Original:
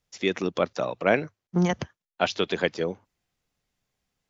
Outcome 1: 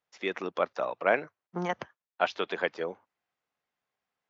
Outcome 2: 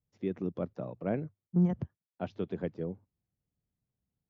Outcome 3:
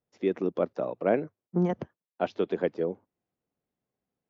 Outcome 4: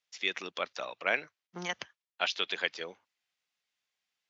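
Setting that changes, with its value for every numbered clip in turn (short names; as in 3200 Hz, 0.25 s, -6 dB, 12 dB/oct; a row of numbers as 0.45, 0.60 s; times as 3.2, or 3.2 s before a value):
band-pass, frequency: 1100, 110, 350, 3000 Hz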